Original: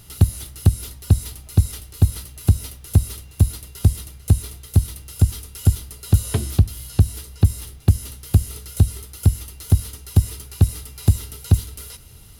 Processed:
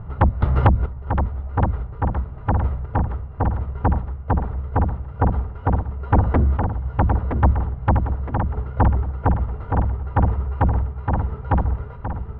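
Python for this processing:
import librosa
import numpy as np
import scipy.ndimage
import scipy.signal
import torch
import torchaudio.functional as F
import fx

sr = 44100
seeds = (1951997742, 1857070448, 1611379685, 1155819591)

p1 = scipy.signal.sosfilt(scipy.signal.butter(4, 1200.0, 'lowpass', fs=sr, output='sos'), x)
p2 = fx.peak_eq(p1, sr, hz=310.0, db=-9.5, octaves=0.82)
p3 = fx.fold_sine(p2, sr, drive_db=19, ceiling_db=-3.5)
p4 = p2 + (p3 * librosa.db_to_amplitude(-6.0))
p5 = fx.tremolo_random(p4, sr, seeds[0], hz=3.5, depth_pct=55)
p6 = p5 + fx.echo_feedback(p5, sr, ms=967, feedback_pct=43, wet_db=-6, dry=0)
p7 = fx.band_squash(p6, sr, depth_pct=100, at=(0.42, 0.86))
y = p7 * librosa.db_to_amplitude(-3.0)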